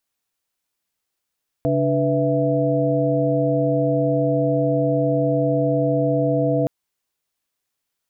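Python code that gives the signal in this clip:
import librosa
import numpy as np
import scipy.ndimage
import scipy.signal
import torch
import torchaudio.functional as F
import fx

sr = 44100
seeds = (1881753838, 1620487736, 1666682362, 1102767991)

y = fx.chord(sr, length_s=5.02, notes=(49, 62, 71, 76), wave='sine', level_db=-22.0)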